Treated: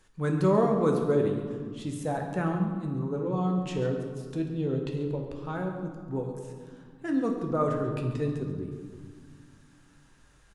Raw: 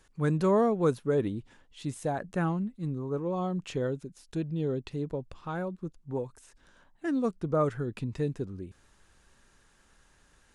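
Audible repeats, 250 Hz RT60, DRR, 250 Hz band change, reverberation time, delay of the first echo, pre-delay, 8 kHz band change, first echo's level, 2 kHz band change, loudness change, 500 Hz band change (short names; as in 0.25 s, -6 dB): 1, 3.1 s, 1.5 dB, +2.5 dB, 1.9 s, 0.139 s, 11 ms, n/a, -13.5 dB, +1.0 dB, +2.0 dB, +1.5 dB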